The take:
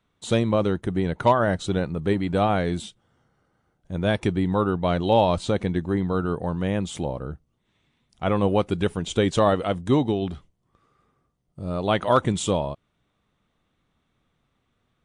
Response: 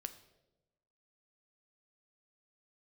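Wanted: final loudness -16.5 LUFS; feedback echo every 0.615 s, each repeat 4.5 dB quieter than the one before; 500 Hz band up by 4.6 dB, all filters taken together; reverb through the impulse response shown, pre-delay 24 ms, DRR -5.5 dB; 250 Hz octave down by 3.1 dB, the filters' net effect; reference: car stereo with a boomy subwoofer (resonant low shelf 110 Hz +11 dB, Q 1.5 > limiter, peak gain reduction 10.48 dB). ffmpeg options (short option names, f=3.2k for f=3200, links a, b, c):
-filter_complex "[0:a]equalizer=f=250:t=o:g=-4,equalizer=f=500:t=o:g=7,aecho=1:1:615|1230|1845|2460|3075|3690|4305|4920|5535:0.596|0.357|0.214|0.129|0.0772|0.0463|0.0278|0.0167|0.01,asplit=2[a][b];[1:a]atrim=start_sample=2205,adelay=24[c];[b][c]afir=irnorm=-1:irlink=0,volume=8.5dB[d];[a][d]amix=inputs=2:normalize=0,lowshelf=f=110:t=q:w=1.5:g=11,volume=-0.5dB,alimiter=limit=-6.5dB:level=0:latency=1"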